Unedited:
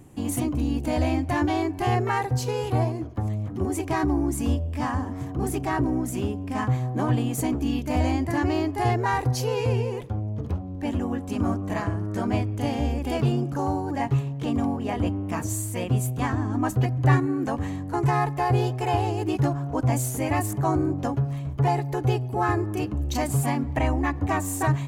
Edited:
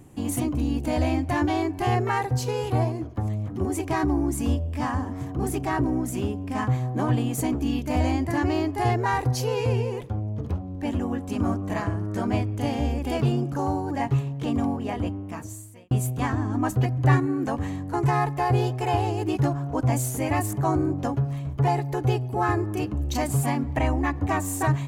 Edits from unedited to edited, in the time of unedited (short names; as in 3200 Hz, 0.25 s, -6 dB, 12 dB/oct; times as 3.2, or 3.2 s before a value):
14.71–15.91 fade out